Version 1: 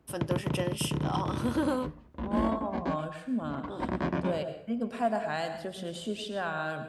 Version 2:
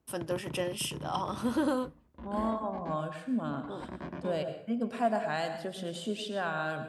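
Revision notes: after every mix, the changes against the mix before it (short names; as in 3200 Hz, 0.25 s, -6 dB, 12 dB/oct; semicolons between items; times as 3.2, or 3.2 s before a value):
background -10.5 dB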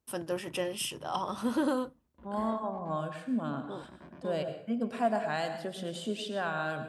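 background -10.5 dB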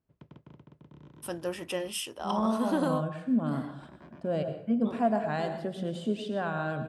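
first voice: entry +1.15 s; second voice: add tilt -2.5 dB/oct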